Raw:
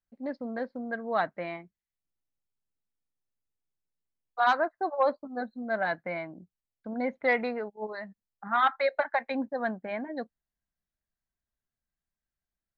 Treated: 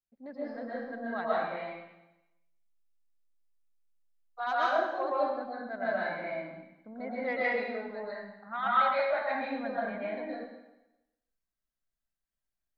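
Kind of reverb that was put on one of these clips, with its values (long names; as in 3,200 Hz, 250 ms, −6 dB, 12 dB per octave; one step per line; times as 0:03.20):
comb and all-pass reverb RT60 0.95 s, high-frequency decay 1×, pre-delay 90 ms, DRR −8 dB
level −10.5 dB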